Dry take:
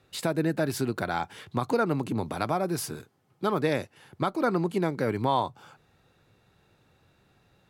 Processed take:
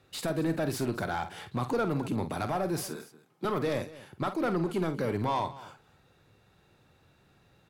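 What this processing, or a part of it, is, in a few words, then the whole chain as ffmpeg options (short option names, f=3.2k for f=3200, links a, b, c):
saturation between pre-emphasis and de-emphasis: -filter_complex "[0:a]asettb=1/sr,asplit=3[a][b][c];[a]atrim=end=2.874[d];[b]atrim=start=2.87:end=3.45,asetpts=PTS-STARTPTS,afade=t=in:d=0.004:c=qsin,afade=t=out:st=0.576:d=0.004:c=qsin,highpass=f=160:w=0.5412,highpass=f=160:w=1.3066[e];[c]atrim=start=3.446[f];[d][e]acrossfade=d=0.004:c1=hsin:c2=qsin[g];[g][f]acrossfade=d=0.004:c1=qsin:c2=hsin,highshelf=f=2.6k:g=12,asoftclip=type=tanh:threshold=-22.5dB,highshelf=f=2.6k:g=-12,aecho=1:1:49|232:0.299|0.126"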